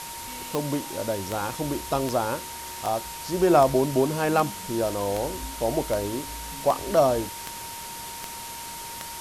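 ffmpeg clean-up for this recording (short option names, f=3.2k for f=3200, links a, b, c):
-af "adeclick=t=4,bandreject=f=930:w=30,afwtdn=0.014"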